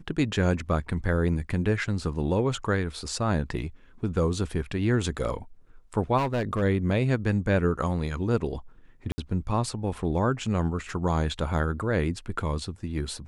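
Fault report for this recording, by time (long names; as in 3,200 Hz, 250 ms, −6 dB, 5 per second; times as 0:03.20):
0:06.17–0:06.63: clipping −22.5 dBFS
0:09.12–0:09.18: drop-out 60 ms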